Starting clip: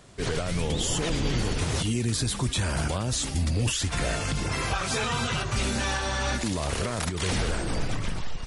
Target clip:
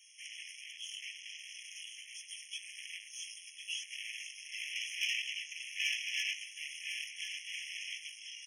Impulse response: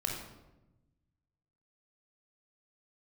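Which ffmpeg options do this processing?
-filter_complex "[0:a]afwtdn=0.0398,acrossover=split=3000[a][b];[b]acompressor=threshold=-58dB:ratio=4:attack=1:release=60[c];[a][c]amix=inputs=2:normalize=0,highpass=f=67:p=1,asplit=2[d][e];[e]acompressor=threshold=-36dB:ratio=6,volume=-1dB[f];[d][f]amix=inputs=2:normalize=0,asettb=1/sr,asplit=3[g][h][i];[g]atrim=end=7.474[j];[h]atrim=start=7.47:end=7.98,asetpts=PTS-STARTPTS,afade=t=in:d=0.004:c=qsin,afade=t=out:st=0.506:d=0.004:c=qsin,asplit=2[k][l];[l]highpass=f=720:p=1,volume=18dB,asoftclip=type=tanh:threshold=-18.5dB[m];[k][m]amix=inputs=2:normalize=0,lowpass=f=2.5k:p=1,volume=-6dB[n];[i]atrim=start=7.976[o];[j][n]acrossfade=d=0.004:c1=hsin:c2=qsin[p];[p][o]acrossfade=d=0.004:c1=qsin:c2=hsin,flanger=delay=17.5:depth=3.2:speed=0.38,asoftclip=type=tanh:threshold=-34.5dB,asuperstop=centerf=1500:order=4:qfactor=0.9,aecho=1:1:1053:0.398,afftfilt=real='re*eq(mod(floor(b*sr/1024/1700),2),1)':imag='im*eq(mod(floor(b*sr/1024/1700),2),1)':win_size=1024:overlap=0.75,volume=17.5dB"

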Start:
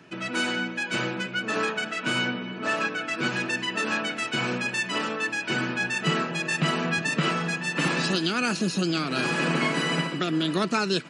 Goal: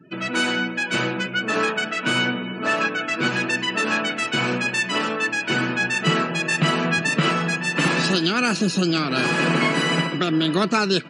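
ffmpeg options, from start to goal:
-af "acontrast=27,afftdn=nr=30:nf=-42"

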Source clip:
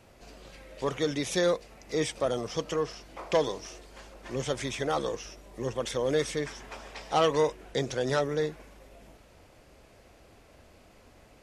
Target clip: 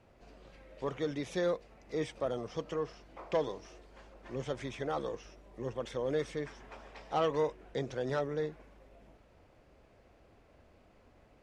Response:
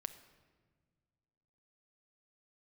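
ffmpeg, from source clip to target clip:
-af "lowpass=f=2k:p=1,volume=-5.5dB"

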